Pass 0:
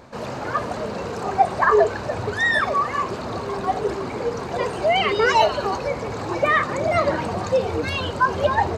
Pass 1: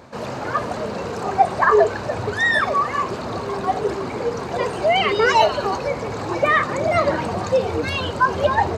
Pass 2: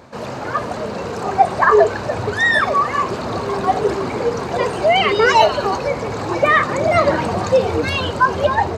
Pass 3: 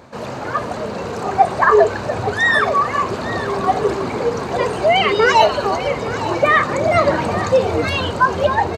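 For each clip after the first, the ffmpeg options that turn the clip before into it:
-af "highpass=58,volume=1.5dB"
-af "dynaudnorm=f=450:g=5:m=5dB,volume=1dB"
-af "equalizer=f=5.2k:w=8:g=-2.5,aecho=1:1:858:0.2"

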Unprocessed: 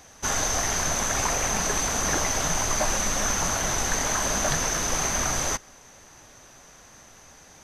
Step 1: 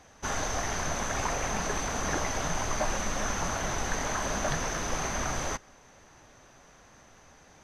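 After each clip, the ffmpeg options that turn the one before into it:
-af "lowpass=f=2.8k:p=1,volume=-3dB"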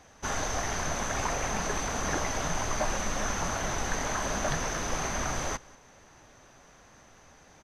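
-af "aecho=1:1:190:0.0668"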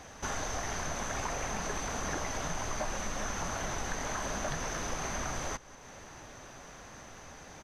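-af "acompressor=threshold=-48dB:ratio=2,volume=6.5dB"

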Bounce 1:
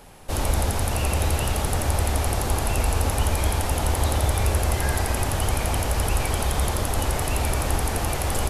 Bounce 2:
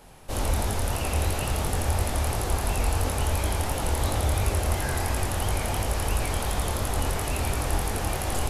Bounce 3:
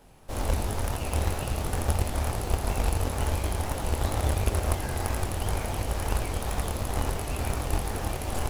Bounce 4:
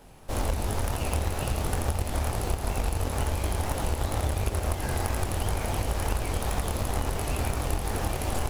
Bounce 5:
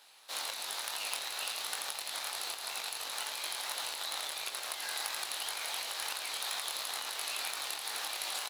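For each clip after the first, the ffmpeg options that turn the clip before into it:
-af "flanger=delay=19:depth=7.4:speed=2.9"
-filter_complex "[0:a]asplit=2[a][b];[b]acrusher=samples=17:mix=1:aa=0.000001:lfo=1:lforange=17:lforate=2.1,volume=-4dB[c];[a][c]amix=inputs=2:normalize=0,aeval=exprs='0.447*(cos(1*acos(clip(val(0)/0.447,-1,1)))-cos(1*PI/2))+0.0891*(cos(3*acos(clip(val(0)/0.447,-1,1)))-cos(3*PI/2))':c=same"
-af "acompressor=threshold=-26dB:ratio=6,volume=3.5dB"
-filter_complex "[0:a]highpass=1.3k,equalizer=f=4k:w=2.5:g=11,asplit=2[a][b];[b]adelay=19,volume=-11.5dB[c];[a][c]amix=inputs=2:normalize=0,volume=-2dB"

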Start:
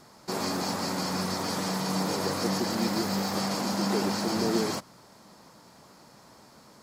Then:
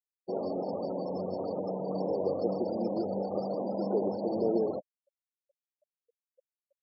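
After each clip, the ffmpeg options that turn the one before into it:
-af "firequalizer=gain_entry='entry(170,0);entry(540,14);entry(970,-4)':delay=0.05:min_phase=1,afftfilt=real='re*gte(hypot(re,im),0.0447)':imag='im*gte(hypot(re,im),0.0447)':win_size=1024:overlap=0.75,volume=-8dB"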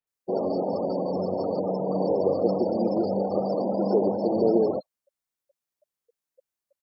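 -filter_complex "[0:a]acrossover=split=3000[a][b];[b]adelay=70[c];[a][c]amix=inputs=2:normalize=0,volume=7dB"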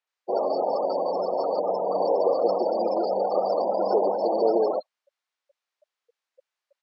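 -af "highpass=710,lowpass=4.3k,volume=8.5dB"

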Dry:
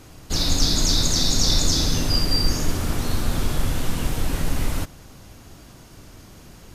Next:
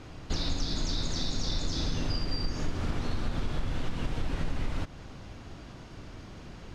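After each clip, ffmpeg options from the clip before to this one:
-af "acompressor=threshold=-26dB:ratio=5,lowpass=4k"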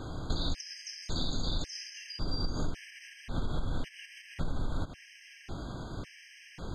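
-af "acompressor=threshold=-33dB:ratio=6,afftfilt=real='re*gt(sin(2*PI*0.91*pts/sr)*(1-2*mod(floor(b*sr/1024/1600),2)),0)':imag='im*gt(sin(2*PI*0.91*pts/sr)*(1-2*mod(floor(b*sr/1024/1600),2)),0)':win_size=1024:overlap=0.75,volume=6dB"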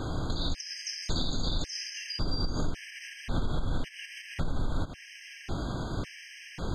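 -af "alimiter=level_in=2dB:limit=-24dB:level=0:latency=1:release=325,volume=-2dB,volume=6.5dB"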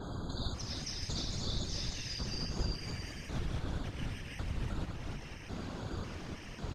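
-af "aecho=1:1:310|511.5|642.5|727.6|782.9:0.631|0.398|0.251|0.158|0.1,afftfilt=real='hypot(re,im)*cos(2*PI*random(0))':imag='hypot(re,im)*sin(2*PI*random(1))':win_size=512:overlap=0.75,adynamicequalizer=threshold=0.00282:dfrequency=5400:dqfactor=0.7:tfrequency=5400:tqfactor=0.7:attack=5:release=100:ratio=0.375:range=2:mode=boostabove:tftype=highshelf,volume=-2dB"

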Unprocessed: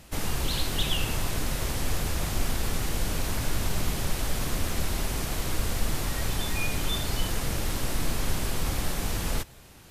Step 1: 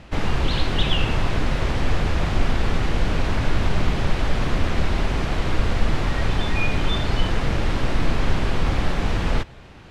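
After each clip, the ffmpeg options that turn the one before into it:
-af "lowpass=3k,volume=8dB"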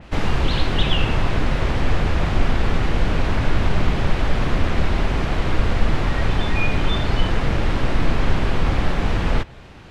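-af "adynamicequalizer=threshold=0.01:dfrequency=3700:dqfactor=0.7:tfrequency=3700:tqfactor=0.7:attack=5:release=100:ratio=0.375:range=2:mode=cutabove:tftype=highshelf,volume=2dB"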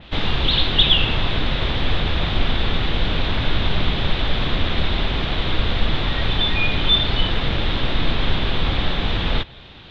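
-af "lowpass=f=3.6k:t=q:w=6.3,volume=-2dB"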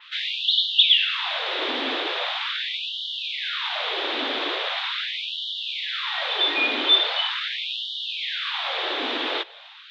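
-af "afftfilt=real='re*gte(b*sr/1024,240*pow(2900/240,0.5+0.5*sin(2*PI*0.41*pts/sr)))':imag='im*gte(b*sr/1024,240*pow(2900/240,0.5+0.5*sin(2*PI*0.41*pts/sr)))':win_size=1024:overlap=0.75"

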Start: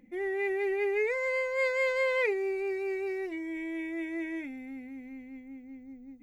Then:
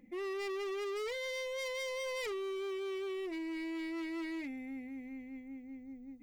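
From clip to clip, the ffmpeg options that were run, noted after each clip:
-af "asoftclip=type=hard:threshold=-35.5dB,bandreject=f=1.5k:w=8.1,volume=-1.5dB"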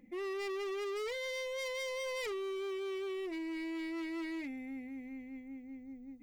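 -af anull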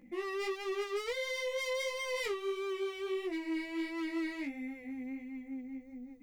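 -af "flanger=delay=16:depth=3.9:speed=1.5,volume=6dB"

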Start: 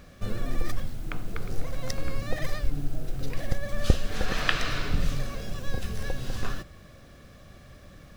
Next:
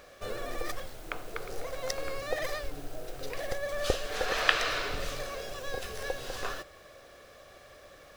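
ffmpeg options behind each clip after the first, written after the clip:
-af "lowshelf=f=310:t=q:w=1.5:g=-14,volume=1dB"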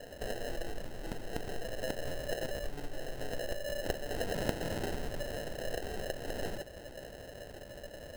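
-af "acompressor=threshold=-43dB:ratio=2.5,acrusher=samples=38:mix=1:aa=0.000001,volume=6dB"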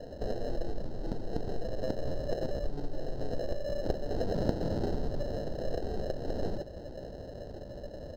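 -filter_complex "[0:a]firequalizer=gain_entry='entry(240,0);entry(2400,-22);entry(4300,-6);entry(8600,-24)':delay=0.05:min_phase=1,asplit=2[a][b];[b]asoftclip=type=tanh:threshold=-34dB,volume=-9.5dB[c];[a][c]amix=inputs=2:normalize=0,volume=4.5dB"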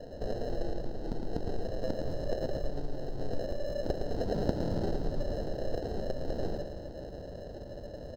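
-af "aecho=1:1:112|224|336|448|560|672|784:0.473|0.251|0.133|0.0704|0.0373|0.0198|0.0105,volume=-1dB"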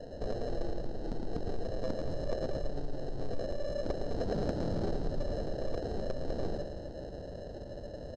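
-af "asoftclip=type=tanh:threshold=-23dB,aresample=22050,aresample=44100"

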